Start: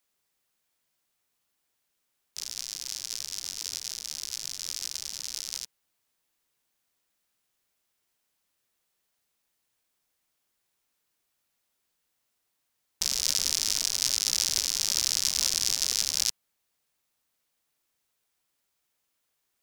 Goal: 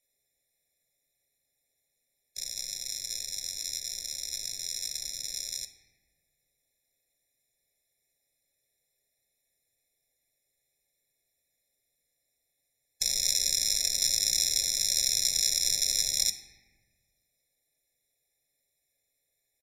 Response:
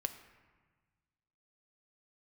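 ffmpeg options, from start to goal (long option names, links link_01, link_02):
-filter_complex "[1:a]atrim=start_sample=2205[link_01];[0:a][link_01]afir=irnorm=-1:irlink=0,aresample=32000,aresample=44100,highshelf=frequency=5400:gain=6,afftfilt=real='re*eq(mod(floor(b*sr/1024/850),2),0)':imag='im*eq(mod(floor(b*sr/1024/850),2),0)':win_size=1024:overlap=0.75"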